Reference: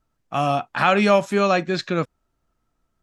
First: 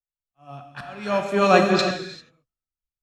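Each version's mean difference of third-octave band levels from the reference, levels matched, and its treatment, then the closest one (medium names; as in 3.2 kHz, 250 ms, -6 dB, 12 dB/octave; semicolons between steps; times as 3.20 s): 10.5 dB: band-stop 2.2 kHz, Q 24; slow attack 585 ms; gated-style reverb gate 420 ms flat, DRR 1 dB; three bands expanded up and down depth 100%; trim -1.5 dB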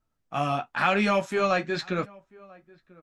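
2.0 dB: dynamic bell 1.8 kHz, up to +4 dB, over -33 dBFS, Q 1; in parallel at -11 dB: saturation -18.5 dBFS, distortion -7 dB; on the sum: flange 0.94 Hz, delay 8.2 ms, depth 7.2 ms, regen -35%; echo from a far wall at 170 m, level -24 dB; trim -4 dB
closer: second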